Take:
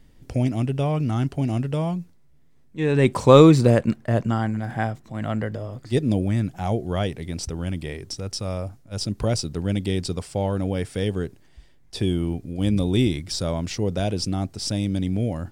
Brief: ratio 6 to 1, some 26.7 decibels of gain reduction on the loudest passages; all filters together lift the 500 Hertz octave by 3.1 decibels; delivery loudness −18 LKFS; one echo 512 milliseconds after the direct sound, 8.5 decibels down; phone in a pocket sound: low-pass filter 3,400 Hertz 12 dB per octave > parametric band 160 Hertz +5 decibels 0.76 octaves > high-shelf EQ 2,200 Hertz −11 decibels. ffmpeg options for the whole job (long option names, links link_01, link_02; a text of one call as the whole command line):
ffmpeg -i in.wav -af "equalizer=frequency=500:width_type=o:gain=4,acompressor=threshold=-35dB:ratio=6,lowpass=3400,equalizer=frequency=160:width_type=o:width=0.76:gain=5,highshelf=frequency=2200:gain=-11,aecho=1:1:512:0.376,volume=19dB" out.wav